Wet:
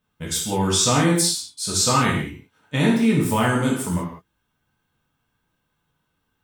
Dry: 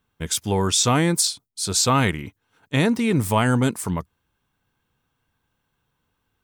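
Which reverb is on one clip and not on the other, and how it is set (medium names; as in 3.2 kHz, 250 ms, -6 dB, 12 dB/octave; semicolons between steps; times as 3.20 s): gated-style reverb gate 220 ms falling, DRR -4 dB; trim -5 dB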